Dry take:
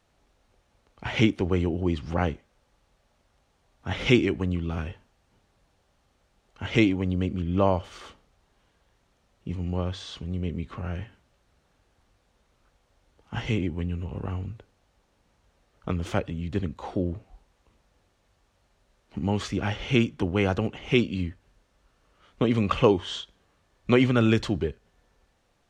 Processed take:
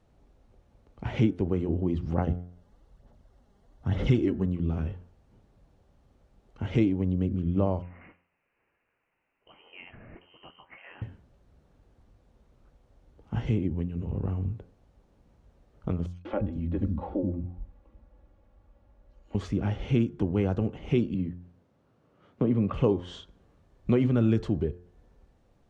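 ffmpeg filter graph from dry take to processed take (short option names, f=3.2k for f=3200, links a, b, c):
-filter_complex "[0:a]asettb=1/sr,asplit=3[a][b][c];[a]atrim=end=2.184[d];[b]atrim=start=2.18:end=4.46,asetpts=PTS-STARTPTS,afade=t=in:d=0.004:c=qsin,afade=t=out:st=2.276:d=0.004:c=qsin,bandreject=f=2.4k:w=7.9,aphaser=in_gain=1:out_gain=1:delay=5:decay=0.49:speed=1.1:type=sinusoidal[e];[c]atrim=start=4.456[f];[d][e]acrossfade=d=0.004:c1=hsin:c2=qsin[g];[g][f]acrossfade=d=0.004:c1=qsin:c2=hsin,asettb=1/sr,asplit=3[h][i][j];[h]atrim=end=7.824[k];[i]atrim=start=7.82:end=11.02,asetpts=PTS-STARTPTS,afade=t=in:d=0.004:c=qsin,afade=t=out:st=3.196:d=0.004:c=qsin,highpass=810,lowpass=f=2.8k:t=q:w=0.5098,lowpass=f=2.8k:t=q:w=0.6013,lowpass=f=2.8k:t=q:w=0.9,lowpass=f=2.8k:t=q:w=2.563,afreqshift=-3300[l];[j]atrim=start=11.016[m];[k][l]acrossfade=d=0.004:c1=hsin:c2=qsin[n];[n][m]acrossfade=d=0.004:c1=qsin:c2=hsin,asettb=1/sr,asplit=3[o][p][q];[o]atrim=end=16.064[r];[p]atrim=start=16.06:end=19.35,asetpts=PTS-STARTPTS,afade=t=in:d=0.004:c=qsin,afade=t=out:st=3.286:d=0.004:c=qsin,aemphasis=mode=reproduction:type=75fm,aecho=1:1:3.6:0.6,atrim=end_sample=145089,acrossover=split=260|4400[s][t][u];[t]adelay=190[v];[s]adelay=270[w];[w][v][u]amix=inputs=3:normalize=0,atrim=end_sample=145089[x];[q]atrim=start=19.346[y];[r][x]acrossfade=d=0.004:c1=hsin:c2=qsin[z];[z][y]acrossfade=d=0.004:c1=qsin:c2=hsin,asettb=1/sr,asplit=3[aa][ab][ac];[aa]atrim=end=21.144[ad];[ab]atrim=start=21.14:end=22.74,asetpts=PTS-STARTPTS,afade=t=in:d=0.004:c=qsin,afade=t=out:st=1.596:d=0.004:c=qsin,highpass=f=100:w=0.5412,highpass=f=100:w=1.3066,acrossover=split=3100[ae][af];[af]acompressor=threshold=-56dB:ratio=4:attack=1:release=60[ag];[ae][ag]amix=inputs=2:normalize=0,highshelf=f=4.2k:g=-8.5[ah];[ac]atrim=start=22.736[ai];[ad][ah]acrossfade=d=0.004:c1=hsin:c2=qsin[aj];[aj][ai]acrossfade=d=0.004:c1=qsin:c2=hsin,acompressor=threshold=-40dB:ratio=1.5,tiltshelf=f=810:g=8,bandreject=f=88.31:t=h:w=4,bandreject=f=176.62:t=h:w=4,bandreject=f=264.93:t=h:w=4,bandreject=f=353.24:t=h:w=4,bandreject=f=441.55:t=h:w=4,bandreject=f=529.86:t=h:w=4,bandreject=f=618.17:t=h:w=4,bandreject=f=706.48:t=h:w=4,bandreject=f=794.79:t=h:w=4,bandreject=f=883.1:t=h:w=4,bandreject=f=971.41:t=h:w=4,bandreject=f=1.05972k:t=h:w=4,bandreject=f=1.14803k:t=h:w=4,bandreject=f=1.23634k:t=h:w=4,bandreject=f=1.32465k:t=h:w=4,bandreject=f=1.41296k:t=h:w=4,bandreject=f=1.50127k:t=h:w=4,bandreject=f=1.58958k:t=h:w=4,bandreject=f=1.67789k:t=h:w=4,bandreject=f=1.7662k:t=h:w=4"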